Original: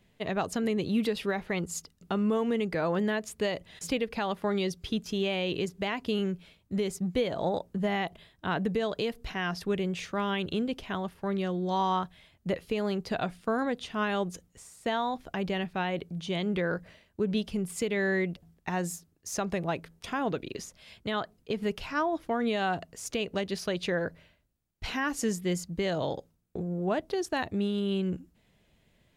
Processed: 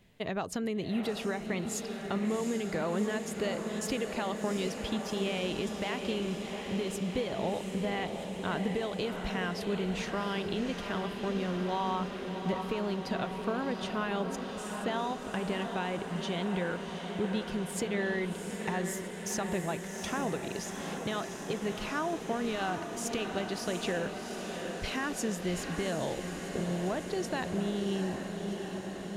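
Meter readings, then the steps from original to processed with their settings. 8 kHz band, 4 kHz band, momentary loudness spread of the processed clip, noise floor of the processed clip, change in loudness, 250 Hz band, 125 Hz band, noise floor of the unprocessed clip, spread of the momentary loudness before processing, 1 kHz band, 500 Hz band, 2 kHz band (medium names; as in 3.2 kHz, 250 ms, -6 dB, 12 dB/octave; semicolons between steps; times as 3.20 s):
+1.0 dB, -1.5 dB, 4 LU, -40 dBFS, -2.5 dB, -2.0 dB, -1.5 dB, -68 dBFS, 8 LU, -2.5 dB, -2.5 dB, -2.5 dB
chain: compression 2:1, threshold -37 dBFS, peak gain reduction 8 dB; on a send: echo that smears into a reverb 734 ms, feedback 76%, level -6.5 dB; on the sum: trim +2 dB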